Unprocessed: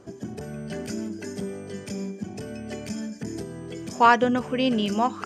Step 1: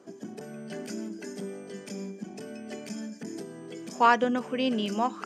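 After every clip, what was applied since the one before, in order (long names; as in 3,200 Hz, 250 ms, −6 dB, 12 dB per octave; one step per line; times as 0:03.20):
high-pass filter 180 Hz 24 dB per octave
level −4 dB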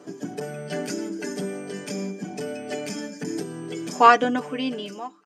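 fade-out on the ending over 1.40 s
comb filter 6.8 ms, depth 70%
level +7 dB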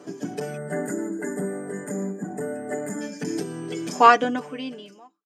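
fade-out on the ending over 1.39 s
gain on a spectral selection 0:00.57–0:03.01, 2,100–6,700 Hz −24 dB
level +1.5 dB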